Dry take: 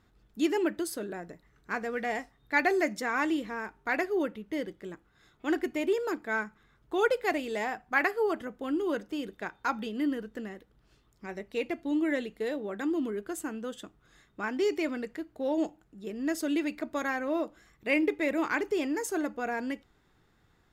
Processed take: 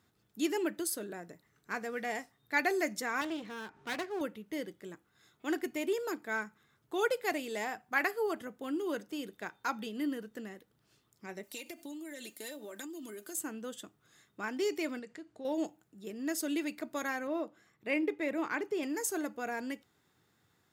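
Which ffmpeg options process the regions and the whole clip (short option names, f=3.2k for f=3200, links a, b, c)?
-filter_complex "[0:a]asettb=1/sr,asplit=3[a][b][c];[a]atrim=end=3.214[d];[b]atrim=start=3.21:end=4.21,asetpts=PTS-STARTPTS,afade=t=in:d=0.004:c=qsin,afade=t=out:st=0.996:d=0.004:c=qsin,lowpass=4.7k,aeval=exprs='clip(val(0),-1,0.0106)':c=same,acompressor=mode=upward:threshold=-41dB:ratio=2.5:attack=3.2:release=140:knee=2.83:detection=peak[e];[c]atrim=start=4.206[f];[d][e]acrossfade=d=0.004:c1=hsin:c2=qsin[g];[g][f]acrossfade=d=0.004:c1=qsin:c2=hsin,asettb=1/sr,asplit=3[h][i][j];[h]atrim=end=11.434[k];[i]atrim=start=11.43:end=13.36,asetpts=PTS-STARTPTS,afade=t=in:d=0.004:c=qsin,afade=t=out:st=1.926:d=0.004:c=qsin,bass=f=250:g=-7,treble=f=4k:g=14,aecho=1:1:3.3:0.62,atrim=end_sample=85113,acompressor=threshold=-36dB:ratio=16:attack=3.2:release=140:knee=1:detection=peak[l];[j]atrim=start=13.356[m];[k][l]acrossfade=d=0.004:c1=hsin:c2=qsin[n];[n][m]acrossfade=d=0.004:c1=qsin:c2=hsin,asettb=1/sr,asplit=3[o][p][q];[o]atrim=end=14.994[r];[p]atrim=start=14.99:end=15.45,asetpts=PTS-STARTPTS,afade=t=in:d=0.004:c=qsin,afade=t=out:st=0.456:d=0.004:c=qsin,lowpass=f=8.6k:w=0.5412,lowpass=f=8.6k:w=1.3066,acompressor=threshold=-41dB:ratio=2:attack=3.2:release=140:knee=1:detection=peak[s];[q]atrim=start=15.446[t];[r][s]acrossfade=d=0.004:c1=hsin:c2=qsin[u];[u][t]acrossfade=d=0.004:c1=qsin:c2=hsin,asettb=1/sr,asplit=3[v][w][x];[v]atrim=end=17.274[y];[w]atrim=start=17.27:end=18.83,asetpts=PTS-STARTPTS,afade=t=in:d=0.004:c=qsin,afade=t=out:st=1.556:d=0.004:c=qsin,highpass=84,highshelf=f=4.2k:g=-12[z];[x]atrim=start=18.826[aa];[y][z]acrossfade=d=0.004:c1=hsin:c2=qsin[ab];[ab][aa]acrossfade=d=0.004:c1=qsin:c2=hsin,highpass=f=87:w=0.5412,highpass=f=87:w=1.3066,highshelf=f=5.3k:g=11.5,volume=-5dB"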